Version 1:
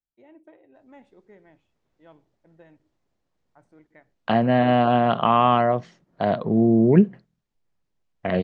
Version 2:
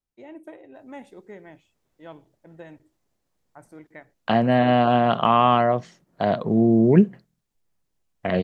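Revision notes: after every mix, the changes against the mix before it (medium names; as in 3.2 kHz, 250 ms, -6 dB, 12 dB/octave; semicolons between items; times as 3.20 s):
first voice +9.0 dB; master: remove distance through air 97 m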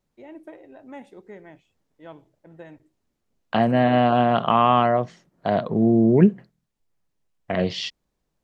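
second voice: entry -0.75 s; master: add treble shelf 5.9 kHz -5.5 dB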